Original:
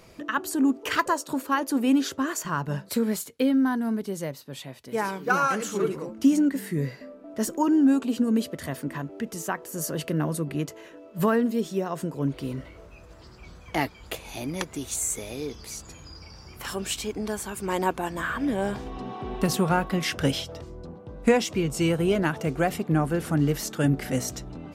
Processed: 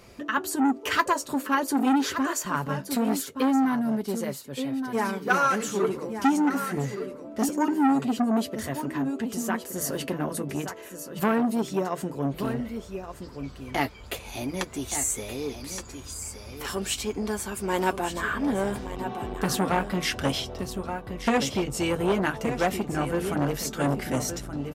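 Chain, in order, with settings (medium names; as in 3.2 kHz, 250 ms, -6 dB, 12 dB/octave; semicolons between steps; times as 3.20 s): comb of notches 160 Hz; on a send: delay 1172 ms -10 dB; on the sum: transformer saturation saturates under 1.1 kHz; trim +2.5 dB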